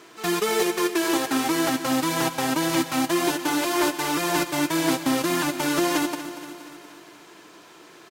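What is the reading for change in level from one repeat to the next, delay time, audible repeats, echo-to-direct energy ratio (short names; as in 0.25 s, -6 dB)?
-4.5 dB, 0.236 s, 5, -10.5 dB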